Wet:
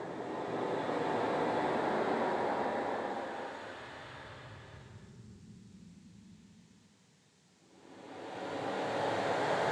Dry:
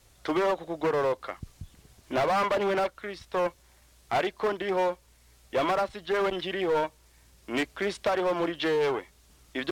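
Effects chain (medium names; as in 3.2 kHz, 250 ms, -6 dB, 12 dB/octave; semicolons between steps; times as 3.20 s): noise-vocoded speech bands 6; Paulstretch 6.1×, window 0.50 s, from 0.68 s; trim -6.5 dB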